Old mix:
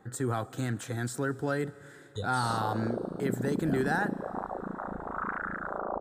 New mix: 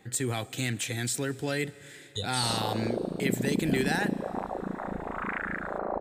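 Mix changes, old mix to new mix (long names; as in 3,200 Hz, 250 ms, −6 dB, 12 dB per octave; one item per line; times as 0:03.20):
background: send on
master: add high shelf with overshoot 1,800 Hz +9 dB, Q 3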